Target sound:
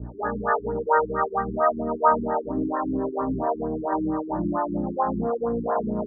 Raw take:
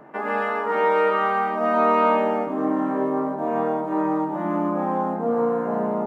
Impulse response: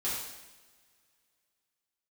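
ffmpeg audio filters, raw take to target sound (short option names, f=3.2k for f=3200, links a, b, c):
-filter_complex "[0:a]aeval=exprs='val(0)+0.0141*(sin(2*PI*60*n/s)+sin(2*PI*2*60*n/s)/2+sin(2*PI*3*60*n/s)/3+sin(2*PI*4*60*n/s)/4+sin(2*PI*5*60*n/s)/5)':c=same,acrossover=split=810[a][b];[a]alimiter=limit=-22.5dB:level=0:latency=1:release=75[c];[c][b]amix=inputs=2:normalize=0,acrossover=split=410[d][e];[d]aeval=exprs='val(0)*(1-1/2+1/2*cos(2*PI*2.7*n/s))':c=same[f];[e]aeval=exprs='val(0)*(1-1/2-1/2*cos(2*PI*2.7*n/s))':c=same[g];[f][g]amix=inputs=2:normalize=0,highpass=58,asplit=2[h][i];[1:a]atrim=start_sample=2205,lowpass=1.3k[j];[i][j]afir=irnorm=-1:irlink=0,volume=-27dB[k];[h][k]amix=inputs=2:normalize=0,afftfilt=real='re*lt(b*sr/1024,380*pow(2000/380,0.5+0.5*sin(2*PI*4.4*pts/sr)))':imag='im*lt(b*sr/1024,380*pow(2000/380,0.5+0.5*sin(2*PI*4.4*pts/sr)))':win_size=1024:overlap=0.75,volume=7.5dB"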